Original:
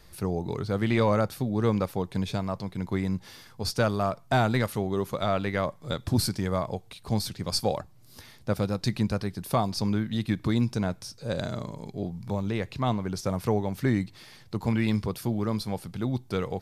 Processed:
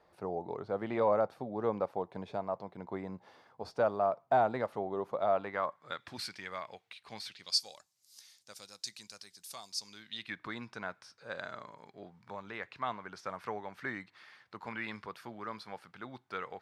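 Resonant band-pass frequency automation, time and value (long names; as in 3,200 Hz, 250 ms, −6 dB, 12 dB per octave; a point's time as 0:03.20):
resonant band-pass, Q 1.6
0:05.30 710 Hz
0:06.17 2,200 Hz
0:07.27 2,200 Hz
0:07.67 6,700 Hz
0:09.86 6,700 Hz
0:10.40 1,500 Hz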